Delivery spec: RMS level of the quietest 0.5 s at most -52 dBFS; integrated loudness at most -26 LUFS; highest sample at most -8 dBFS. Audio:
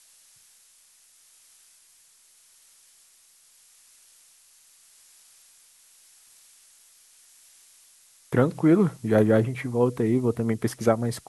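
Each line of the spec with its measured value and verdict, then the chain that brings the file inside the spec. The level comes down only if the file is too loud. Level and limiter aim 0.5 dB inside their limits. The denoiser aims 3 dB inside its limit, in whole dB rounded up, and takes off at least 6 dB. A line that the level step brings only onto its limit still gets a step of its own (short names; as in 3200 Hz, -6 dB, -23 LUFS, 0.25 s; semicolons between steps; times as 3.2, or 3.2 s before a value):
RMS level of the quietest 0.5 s -58 dBFS: OK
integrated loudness -23.5 LUFS: fail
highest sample -5.0 dBFS: fail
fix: gain -3 dB; limiter -8.5 dBFS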